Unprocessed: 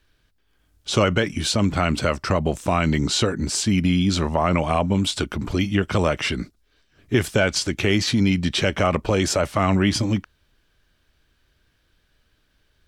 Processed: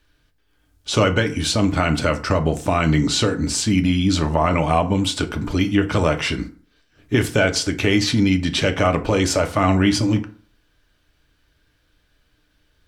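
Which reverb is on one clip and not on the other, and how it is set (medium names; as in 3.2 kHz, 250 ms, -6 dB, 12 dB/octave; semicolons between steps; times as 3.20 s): FDN reverb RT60 0.46 s, low-frequency decay 0.95×, high-frequency decay 0.6×, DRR 6 dB; trim +1 dB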